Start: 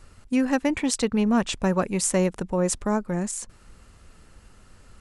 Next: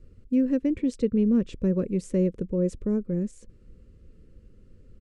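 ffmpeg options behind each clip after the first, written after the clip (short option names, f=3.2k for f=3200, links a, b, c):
-af "firequalizer=gain_entry='entry(510,0);entry(730,-28);entry(1100,-21);entry(2200,-16);entry(10000,-25)':delay=0.05:min_phase=1"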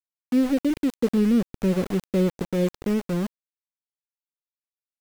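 -af "aeval=exprs='val(0)*gte(abs(val(0)),0.0299)':c=same,volume=2dB"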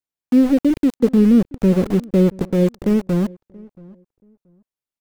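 -filter_complex "[0:a]tiltshelf=f=770:g=3.5,asplit=2[a][b];[b]adelay=679,lowpass=f=1k:p=1,volume=-23dB,asplit=2[c][d];[d]adelay=679,lowpass=f=1k:p=1,volume=0.22[e];[a][c][e]amix=inputs=3:normalize=0,volume=4.5dB"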